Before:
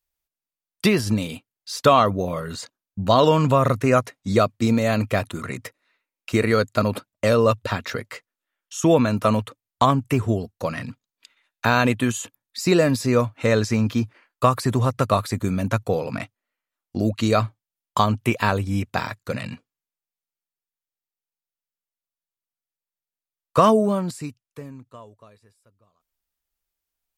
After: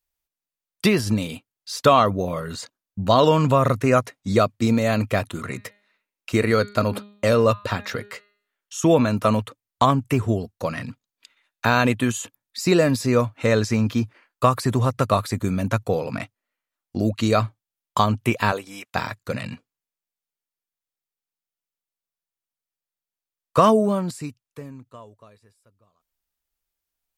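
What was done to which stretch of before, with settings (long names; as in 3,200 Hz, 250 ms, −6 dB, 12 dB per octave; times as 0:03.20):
0:05.30–0:09.07: hum removal 205 Hz, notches 22
0:18.51–0:18.94: high-pass filter 340 Hz → 1,000 Hz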